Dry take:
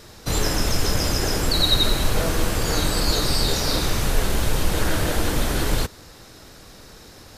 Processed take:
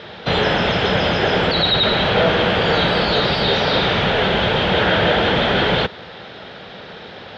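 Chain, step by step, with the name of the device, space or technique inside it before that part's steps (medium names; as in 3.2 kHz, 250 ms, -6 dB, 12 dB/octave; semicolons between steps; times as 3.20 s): overdrive pedal into a guitar cabinet (overdrive pedal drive 19 dB, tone 1.2 kHz, clips at -5 dBFS; cabinet simulation 79–3800 Hz, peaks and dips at 180 Hz +5 dB, 300 Hz -9 dB, 1.1 kHz -7 dB, 3.3 kHz +9 dB); trim +5 dB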